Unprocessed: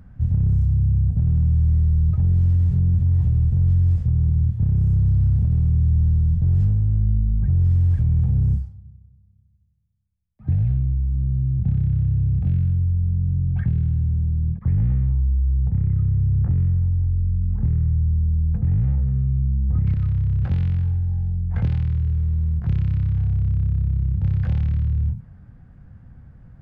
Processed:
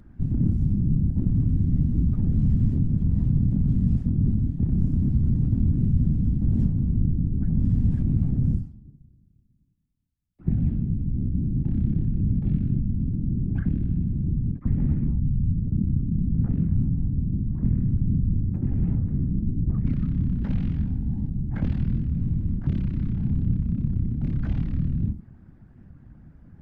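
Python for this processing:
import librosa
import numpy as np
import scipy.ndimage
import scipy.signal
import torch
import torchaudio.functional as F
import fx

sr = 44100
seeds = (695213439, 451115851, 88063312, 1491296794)

y = fx.whisperise(x, sr, seeds[0])
y = fx.moving_average(y, sr, points=51, at=(15.2, 16.34))
y = fx.record_warp(y, sr, rpm=78.0, depth_cents=160.0)
y = y * librosa.db_to_amplitude(-3.5)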